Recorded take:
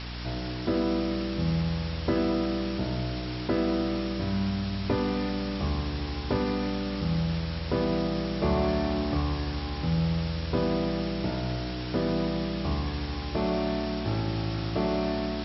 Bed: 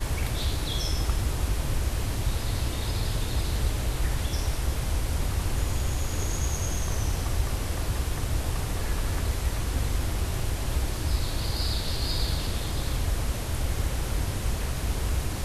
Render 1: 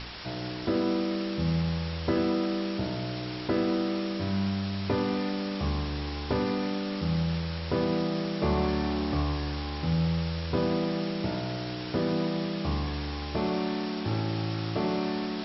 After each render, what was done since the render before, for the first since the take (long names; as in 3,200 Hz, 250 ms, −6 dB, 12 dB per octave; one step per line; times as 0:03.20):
hum removal 60 Hz, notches 11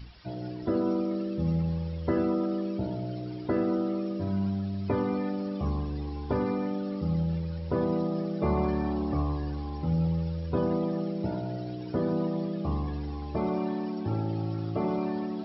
broadband denoise 17 dB, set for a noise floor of −35 dBFS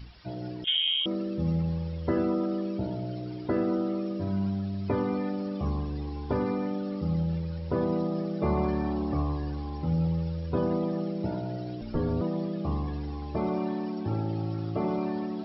0:00.64–0:01.06: voice inversion scrambler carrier 3,500 Hz
0:11.81–0:12.21: frequency shifter −86 Hz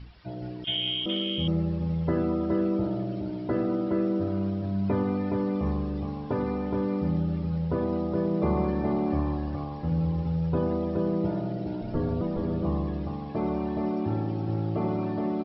high-frequency loss of the air 150 metres
single-tap delay 419 ms −3.5 dB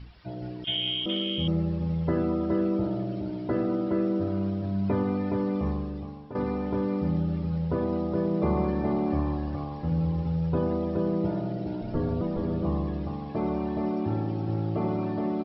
0:05.60–0:06.35: fade out, to −13 dB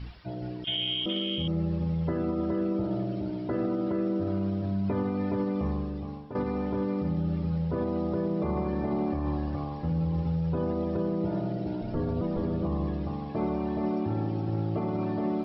brickwall limiter −21 dBFS, peak gain reduction 6.5 dB
reversed playback
upward compression, threshold −32 dBFS
reversed playback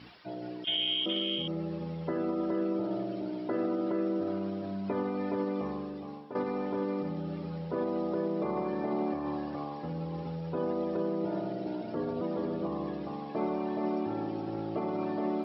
high-pass filter 270 Hz 12 dB per octave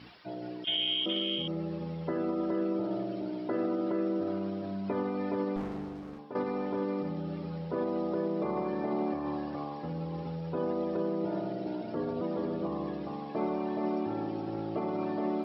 0:05.56–0:06.19: windowed peak hold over 33 samples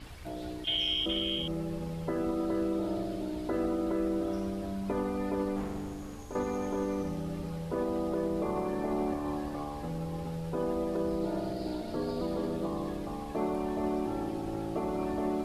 mix in bed −20 dB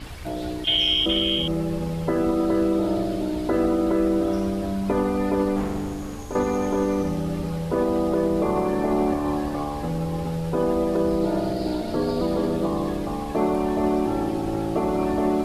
level +9.5 dB